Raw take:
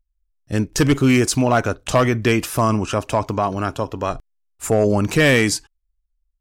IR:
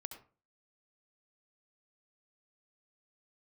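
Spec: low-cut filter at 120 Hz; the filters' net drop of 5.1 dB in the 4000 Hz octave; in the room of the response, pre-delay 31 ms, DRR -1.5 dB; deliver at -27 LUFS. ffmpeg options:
-filter_complex "[0:a]highpass=120,equalizer=f=4k:t=o:g=-7.5,asplit=2[a][b];[1:a]atrim=start_sample=2205,adelay=31[c];[b][c]afir=irnorm=-1:irlink=0,volume=5dB[d];[a][d]amix=inputs=2:normalize=0,volume=-11dB"

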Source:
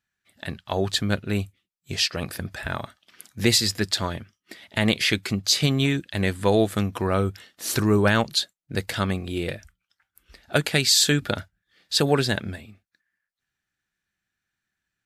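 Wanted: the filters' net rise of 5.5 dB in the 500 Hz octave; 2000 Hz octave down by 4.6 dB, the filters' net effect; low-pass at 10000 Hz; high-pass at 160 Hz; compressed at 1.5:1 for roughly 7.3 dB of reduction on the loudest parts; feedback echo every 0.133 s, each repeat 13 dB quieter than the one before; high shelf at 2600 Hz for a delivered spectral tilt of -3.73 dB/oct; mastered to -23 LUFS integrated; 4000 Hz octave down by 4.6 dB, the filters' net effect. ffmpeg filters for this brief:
-af "highpass=160,lowpass=10k,equalizer=f=500:t=o:g=7,equalizer=f=2k:t=o:g=-6.5,highshelf=f=2.6k:g=5.5,equalizer=f=4k:t=o:g=-9,acompressor=threshold=-31dB:ratio=1.5,aecho=1:1:133|266|399:0.224|0.0493|0.0108,volume=5.5dB"

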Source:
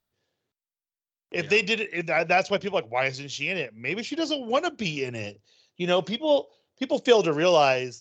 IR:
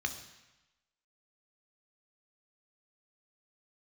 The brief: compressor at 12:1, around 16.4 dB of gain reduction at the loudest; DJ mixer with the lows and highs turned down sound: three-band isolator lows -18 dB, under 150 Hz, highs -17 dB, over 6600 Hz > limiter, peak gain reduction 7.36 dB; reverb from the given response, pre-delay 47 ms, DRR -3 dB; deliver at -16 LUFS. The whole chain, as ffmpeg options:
-filter_complex "[0:a]acompressor=threshold=-29dB:ratio=12,asplit=2[a][b];[1:a]atrim=start_sample=2205,adelay=47[c];[b][c]afir=irnorm=-1:irlink=0,volume=-0.5dB[d];[a][d]amix=inputs=2:normalize=0,acrossover=split=150 6600:gain=0.126 1 0.141[e][f][g];[e][f][g]amix=inputs=3:normalize=0,volume=17dB,alimiter=limit=-6.5dB:level=0:latency=1"

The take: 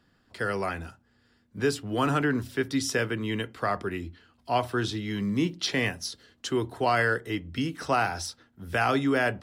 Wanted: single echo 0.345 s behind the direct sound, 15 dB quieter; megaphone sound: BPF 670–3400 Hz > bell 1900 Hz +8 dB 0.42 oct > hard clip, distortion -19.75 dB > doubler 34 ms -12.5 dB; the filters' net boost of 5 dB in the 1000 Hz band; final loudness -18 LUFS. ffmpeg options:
-filter_complex "[0:a]highpass=670,lowpass=3.4k,equalizer=f=1k:t=o:g=8,equalizer=f=1.9k:t=o:w=0.42:g=8,aecho=1:1:345:0.178,asoftclip=type=hard:threshold=-13dB,asplit=2[a][b];[b]adelay=34,volume=-12.5dB[c];[a][c]amix=inputs=2:normalize=0,volume=8dB"

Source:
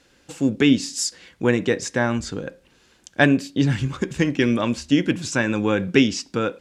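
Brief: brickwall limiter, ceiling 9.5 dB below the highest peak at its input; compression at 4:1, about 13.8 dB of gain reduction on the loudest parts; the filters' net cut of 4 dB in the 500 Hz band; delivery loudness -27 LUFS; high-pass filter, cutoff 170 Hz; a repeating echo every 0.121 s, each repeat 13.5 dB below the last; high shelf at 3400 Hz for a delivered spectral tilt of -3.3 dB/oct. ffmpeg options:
-af "highpass=170,equalizer=f=500:t=o:g=-5,highshelf=f=3.4k:g=6,acompressor=threshold=-30dB:ratio=4,alimiter=limit=-22dB:level=0:latency=1,aecho=1:1:121|242:0.211|0.0444,volume=7dB"

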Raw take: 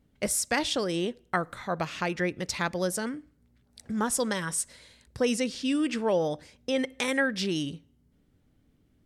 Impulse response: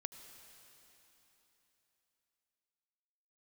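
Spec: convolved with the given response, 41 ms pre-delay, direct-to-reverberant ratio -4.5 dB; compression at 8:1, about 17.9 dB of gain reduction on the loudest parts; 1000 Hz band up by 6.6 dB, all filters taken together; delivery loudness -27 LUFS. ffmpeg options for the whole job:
-filter_complex "[0:a]equalizer=f=1k:t=o:g=8.5,acompressor=threshold=-38dB:ratio=8,asplit=2[a][b];[1:a]atrim=start_sample=2205,adelay=41[c];[b][c]afir=irnorm=-1:irlink=0,volume=7.5dB[d];[a][d]amix=inputs=2:normalize=0,volume=9dB"

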